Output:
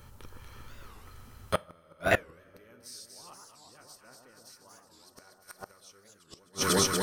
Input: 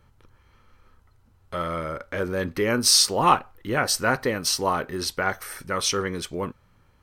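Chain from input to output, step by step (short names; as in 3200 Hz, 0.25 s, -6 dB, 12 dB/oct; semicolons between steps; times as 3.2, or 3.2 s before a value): notch 2100 Hz, Q 22; echo with dull and thin repeats by turns 0.119 s, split 1200 Hz, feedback 82%, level -3 dB; dynamic EQ 630 Hz, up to +3 dB, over -37 dBFS, Q 4.4; flipped gate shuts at -17 dBFS, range -42 dB; high shelf 5100 Hz +11.5 dB; two-slope reverb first 0.3 s, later 3.7 s, from -21 dB, DRR 18 dB; record warp 45 rpm, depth 250 cents; gain +6 dB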